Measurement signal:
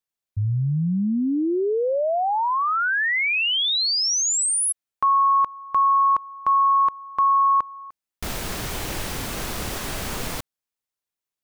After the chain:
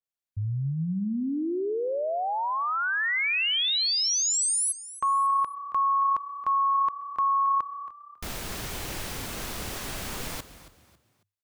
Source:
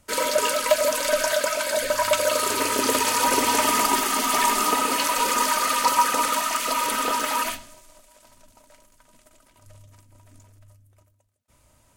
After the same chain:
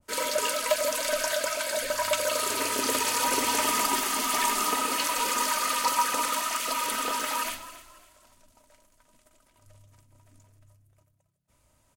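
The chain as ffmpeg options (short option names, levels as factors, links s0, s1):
-filter_complex "[0:a]asplit=4[s0][s1][s2][s3];[s1]adelay=274,afreqshift=33,volume=0.178[s4];[s2]adelay=548,afreqshift=66,volume=0.0569[s5];[s3]adelay=822,afreqshift=99,volume=0.0182[s6];[s0][s4][s5][s6]amix=inputs=4:normalize=0,adynamicequalizer=threshold=0.02:dfrequency=1600:dqfactor=0.7:tfrequency=1600:tqfactor=0.7:attack=5:release=100:ratio=0.375:range=1.5:mode=boostabove:tftype=highshelf,volume=0.473"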